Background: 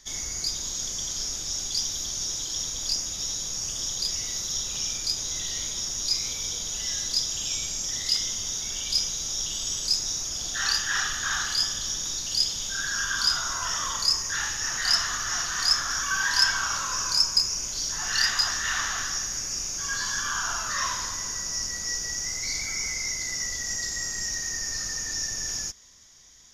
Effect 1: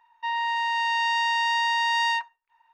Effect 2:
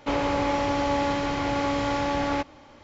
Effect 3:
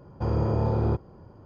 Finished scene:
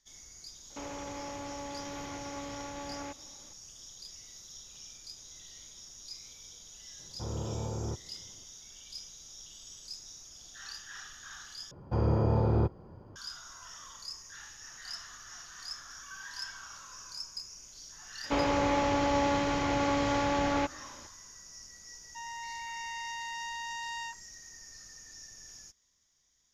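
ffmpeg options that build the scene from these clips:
-filter_complex "[2:a]asplit=2[a][b];[3:a]asplit=2[c][d];[0:a]volume=-19.5dB[e];[a]alimiter=limit=-23dB:level=0:latency=1:release=71[f];[e]asplit=2[g][h];[g]atrim=end=11.714[i];[d]atrim=end=1.45,asetpts=PTS-STARTPTS,volume=-2dB[j];[h]atrim=start=13.156[k];[f]atrim=end=2.83,asetpts=PTS-STARTPTS,volume=-10dB,afade=t=in:d=0.004:c=hsin,afade=t=out:st=2.826:d=0.004:c=hsin,adelay=700[l];[c]atrim=end=1.45,asetpts=PTS-STARTPTS,volume=-11.5dB,afade=t=in:d=0.004:c=hsin,afade=t=out:st=1.446:d=0.004:c=hsin,adelay=6990[m];[b]atrim=end=2.83,asetpts=PTS-STARTPTS,volume=-3dB,afade=t=in:d=0.004:c=hsin,afade=t=out:st=2.826:d=0.004:c=hsin,adelay=18240[n];[1:a]atrim=end=2.73,asetpts=PTS-STARTPTS,volume=-15.5dB,afade=t=in:d=0.004:c=hsin,afade=t=out:st=2.726:d=0.004:c=hsin,adelay=21920[o];[i][j]acrossfade=d=0.004:c1=hsin:c2=hsin[p];[p][k]acrossfade=d=0.004:c1=hsin:c2=hsin[q];[q][l][m][n][o]amix=inputs=5:normalize=0"

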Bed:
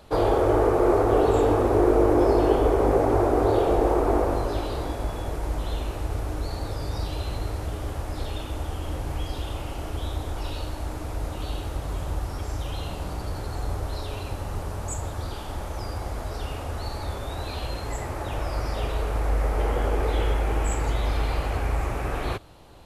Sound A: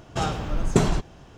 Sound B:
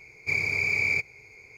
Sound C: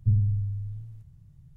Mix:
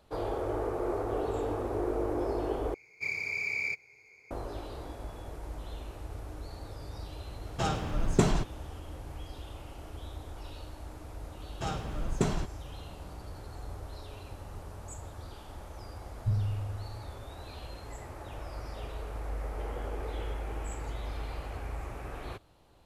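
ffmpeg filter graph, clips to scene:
-filter_complex "[1:a]asplit=2[a][b];[0:a]volume=-12.5dB[c];[2:a]lowshelf=f=210:g=-9.5[d];[c]asplit=2[e][f];[e]atrim=end=2.744[g];[d]atrim=end=1.57,asetpts=PTS-STARTPTS,volume=-7.5dB[h];[f]atrim=start=4.306[i];[a]atrim=end=1.37,asetpts=PTS-STARTPTS,volume=-4.5dB,afade=t=in:d=0.004:c=hsin,afade=t=out:st=1.366:d=0.004:c=hsin,adelay=7430[j];[b]atrim=end=1.37,asetpts=PTS-STARTPTS,volume=-9dB,afade=t=in:d=0.004:c=hsin,afade=t=out:st=1.366:d=0.004:c=hsin,adelay=11450[k];[3:a]atrim=end=1.56,asetpts=PTS-STARTPTS,volume=-7dB,afade=t=in:d=0.004:c=hsin,afade=t=out:st=1.556:d=0.004:c=hsin,adelay=714420S[l];[g][h]acrossfade=d=0.004:c1=hsin:c2=hsin[m];[m][i]acrossfade=d=0.004:c1=hsin:c2=hsin[n];[n][j][k][l]amix=inputs=4:normalize=0"

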